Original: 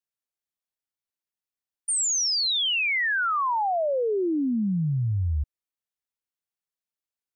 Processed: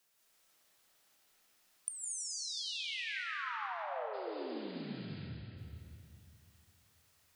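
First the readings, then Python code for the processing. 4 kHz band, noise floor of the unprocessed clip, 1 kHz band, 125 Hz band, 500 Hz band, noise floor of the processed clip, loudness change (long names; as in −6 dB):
−15.5 dB, below −85 dBFS, −15.5 dB, −21.0 dB, −16.0 dB, −71 dBFS, −16.0 dB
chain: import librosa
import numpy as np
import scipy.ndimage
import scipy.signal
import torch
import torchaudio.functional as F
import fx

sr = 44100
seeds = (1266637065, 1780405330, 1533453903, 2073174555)

p1 = fx.low_shelf(x, sr, hz=250.0, db=-7.0)
p2 = fx.spec_paint(p1, sr, seeds[0], shape='noise', start_s=4.13, length_s=0.92, low_hz=1300.0, high_hz=5000.0, level_db=-40.0)
p3 = fx.gate_flip(p2, sr, shuts_db=-39.0, range_db=-39)
p4 = p3 + fx.echo_feedback(p3, sr, ms=271, feedback_pct=48, wet_db=-17.5, dry=0)
p5 = fx.rev_freeverb(p4, sr, rt60_s=2.8, hf_ratio=0.8, predelay_ms=115, drr_db=-5.5)
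y = F.gain(torch.from_numpy(p5), 17.5).numpy()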